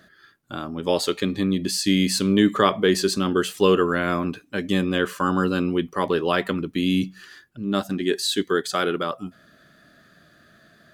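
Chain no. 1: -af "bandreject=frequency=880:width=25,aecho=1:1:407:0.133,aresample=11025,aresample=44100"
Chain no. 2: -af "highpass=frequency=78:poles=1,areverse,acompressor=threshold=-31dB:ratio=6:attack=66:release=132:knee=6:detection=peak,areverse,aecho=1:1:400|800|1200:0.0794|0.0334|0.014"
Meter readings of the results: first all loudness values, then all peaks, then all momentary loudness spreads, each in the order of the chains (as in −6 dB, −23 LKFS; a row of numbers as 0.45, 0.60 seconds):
−23.0, −30.0 LKFS; −3.0, −12.5 dBFS; 11, 6 LU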